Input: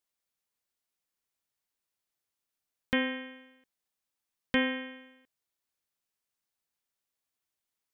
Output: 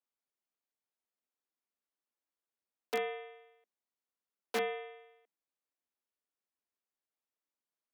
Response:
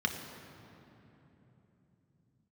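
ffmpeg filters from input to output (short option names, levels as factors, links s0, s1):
-af "aeval=exprs='(mod(7.5*val(0)+1,2)-1)/7.5':c=same,highshelf=f=2100:g=-11.5,afreqshift=200,volume=0.668"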